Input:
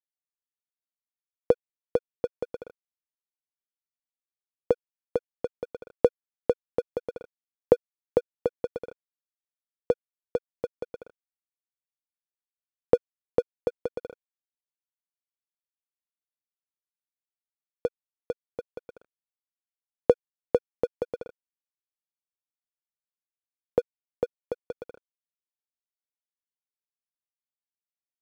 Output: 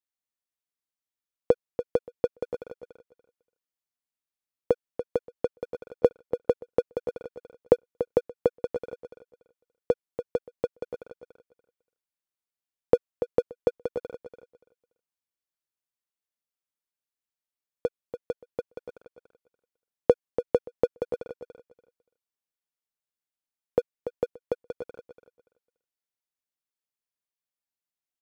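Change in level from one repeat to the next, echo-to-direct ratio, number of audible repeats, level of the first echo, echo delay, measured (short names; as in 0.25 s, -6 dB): -15.0 dB, -10.0 dB, 2, -10.0 dB, 0.288 s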